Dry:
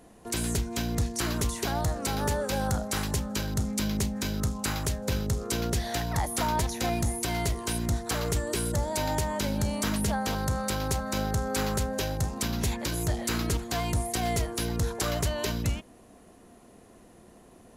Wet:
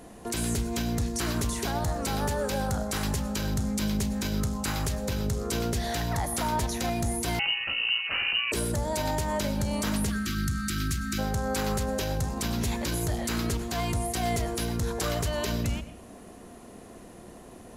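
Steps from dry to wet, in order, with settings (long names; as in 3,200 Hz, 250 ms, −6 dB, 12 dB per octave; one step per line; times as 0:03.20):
0:10.09–0:11.19: time-frequency box erased 380–1,100 Hz
in parallel at +1 dB: downward compressor, threshold −40 dBFS, peak gain reduction 16.5 dB
on the sum: brickwall limiter −20 dBFS, peak gain reduction 5 dB
convolution reverb RT60 0.55 s, pre-delay 94 ms, DRR 12.5 dB
0:07.39–0:08.52: voice inversion scrambler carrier 2,900 Hz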